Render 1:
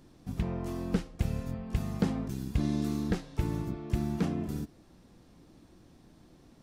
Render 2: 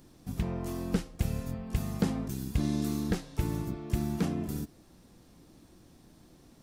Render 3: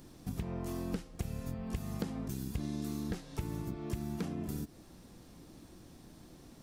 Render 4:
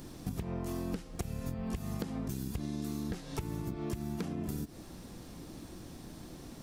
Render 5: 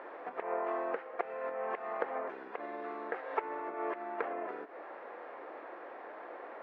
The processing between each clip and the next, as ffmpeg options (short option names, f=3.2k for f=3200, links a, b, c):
-af "highshelf=f=6.9k:g=10"
-af "acompressor=threshold=-37dB:ratio=5,volume=2.5dB"
-af "acompressor=threshold=-40dB:ratio=6,volume=7dB"
-af "asuperpass=centerf=980:order=8:qfactor=0.62,volume=12dB"